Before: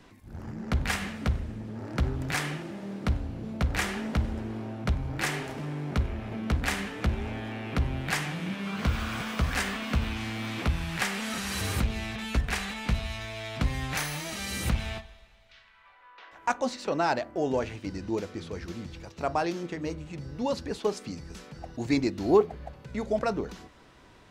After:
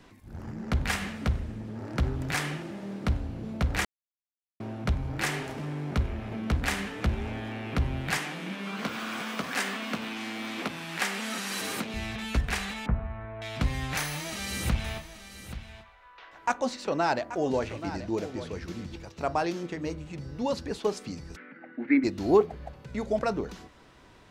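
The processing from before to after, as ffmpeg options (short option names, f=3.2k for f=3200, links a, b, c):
-filter_complex "[0:a]asettb=1/sr,asplit=3[a][b][c];[a]atrim=end=8.174[d];[b]atrim=start=8.17:end=11.94,asetpts=PTS-STARTPTS,afade=t=in:d=0.004:c=qsin,afade=t=out:st=3.766:d=0.004:c=qsin,highpass=f=200:w=0.5412,highpass=f=200:w=1.3066[e];[c]atrim=start=11.936[f];[d][e]acrossfade=d=0.004:c1=hsin:c2=qsin[g];[g][f]acrossfade=d=0.004:c1=qsin:c2=hsin,asettb=1/sr,asplit=3[h][i][j];[h]atrim=end=12.864[k];[i]atrim=start=12.86:end=13.42,asetpts=PTS-STARTPTS,afade=t=in:d=0.004:c=qsin,afade=t=out:st=0.556:d=0.004:c=qsin,lowpass=f=1.5k:w=0.5412,lowpass=f=1.5k:w=1.3066[l];[j]atrim=start=13.416[m];[k][l]acrossfade=d=0.004:c1=hsin:c2=qsin[n];[n][m]acrossfade=d=0.004:c1=qsin:c2=hsin,asettb=1/sr,asplit=3[o][p][q];[o]atrim=end=14.014[r];[p]atrim=start=14.01:end=18.96,asetpts=PTS-STARTPTS,afade=t=in:d=0.004:c=qsin,afade=t=out:st=4.946:d=0.004:c=qsin,aecho=1:1:831:0.237,atrim=end_sample=218295[s];[q]atrim=start=18.956[t];[r][s]acrossfade=d=0.004:c1=hsin:c2=qsin[u];[u][t]acrossfade=d=0.004:c1=qsin:c2=hsin,asplit=3[v][w][x];[v]afade=t=out:st=21.35:d=0.02[y];[w]highpass=f=250:w=0.5412,highpass=f=250:w=1.3066,equalizer=f=260:t=q:w=4:g=9,equalizer=f=410:t=q:w=4:g=-8,equalizer=f=700:t=q:w=4:g=-10,equalizer=f=1k:t=q:w=4:g=-9,equalizer=f=1.5k:t=q:w=4:g=8,equalizer=f=2.1k:t=q:w=4:g=10,lowpass=f=2.2k:w=0.5412,lowpass=f=2.2k:w=1.3066,afade=t=in:st=21.35:d=0.02,afade=t=out:st=22.03:d=0.02[z];[x]afade=t=in:st=22.03:d=0.02[aa];[y][z][aa]amix=inputs=3:normalize=0,asplit=3[ab][ac][ad];[ab]atrim=end=3.85,asetpts=PTS-STARTPTS,afade=t=out:st=3.846:d=0.004:c=hsin[ae];[ac]atrim=start=3.85:end=4.6,asetpts=PTS-STARTPTS,volume=0[af];[ad]atrim=start=4.6,asetpts=PTS-STARTPTS,afade=t=in:d=0.004:c=hsin[ag];[ae][af][ag]concat=n=3:v=0:a=1"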